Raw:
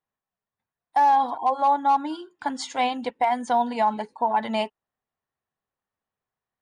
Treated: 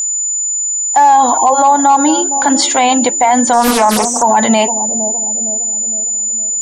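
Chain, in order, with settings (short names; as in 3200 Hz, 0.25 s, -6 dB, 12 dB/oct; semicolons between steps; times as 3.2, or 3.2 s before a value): HPF 110 Hz; analogue delay 0.461 s, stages 2048, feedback 53%, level -14 dB; whine 7000 Hz -34 dBFS; maximiser +21 dB; 3.53–4.23 Doppler distortion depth 0.66 ms; gain -1 dB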